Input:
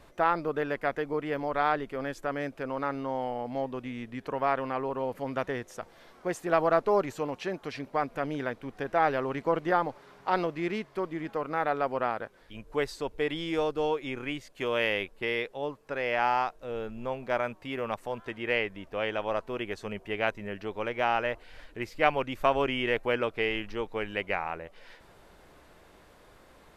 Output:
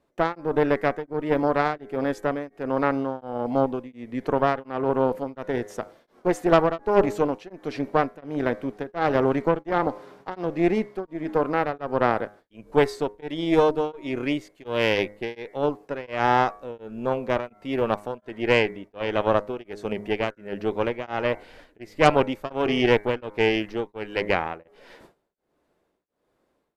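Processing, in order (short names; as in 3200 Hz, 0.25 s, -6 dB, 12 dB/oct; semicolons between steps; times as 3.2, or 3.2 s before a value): tone controls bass -4 dB, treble +2 dB; de-hum 103.6 Hz, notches 22; gate with hold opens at -45 dBFS; bell 280 Hz +11 dB 2.9 oct; added harmonics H 6 -17 dB, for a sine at -2.5 dBFS; beating tremolo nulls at 1.4 Hz; gain +1.5 dB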